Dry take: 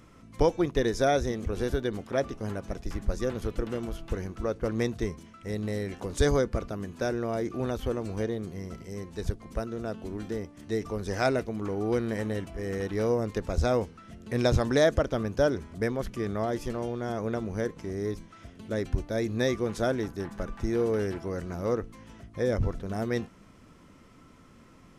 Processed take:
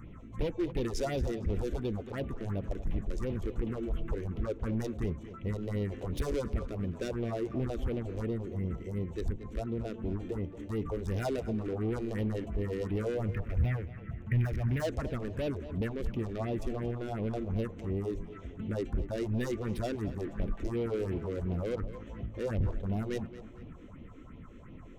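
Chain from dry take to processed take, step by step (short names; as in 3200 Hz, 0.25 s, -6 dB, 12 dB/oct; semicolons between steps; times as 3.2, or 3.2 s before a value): Wiener smoothing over 9 samples; in parallel at +1 dB: compressor, threshold -38 dBFS, peak gain reduction 18.5 dB; on the sum: soft clip -26.5 dBFS, distortion -8 dB; low shelf 190 Hz +5 dB; overloaded stage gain 25 dB; phaser stages 4, 2.8 Hz, lowest notch 130–1500 Hz; 13.28–14.8 ten-band EQ 125 Hz +8 dB, 250 Hz -5 dB, 500 Hz -9 dB, 1000 Hz -4 dB, 2000 Hz +9 dB, 4000 Hz -12 dB, 8000 Hz -12 dB; on a send: tape echo 0.228 s, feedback 46%, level -12.5 dB, low-pass 3800 Hz; on the sum: gain -1.5 dB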